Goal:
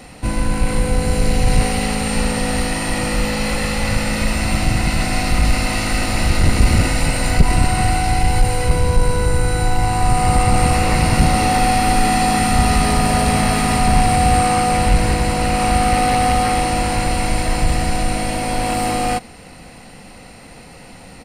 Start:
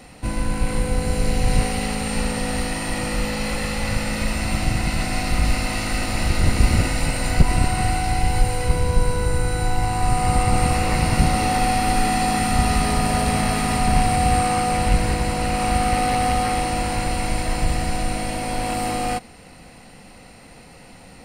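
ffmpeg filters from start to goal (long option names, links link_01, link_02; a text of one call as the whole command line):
ffmpeg -i in.wav -af "aresample=32000,aresample=44100,acontrast=50,volume=-1dB" out.wav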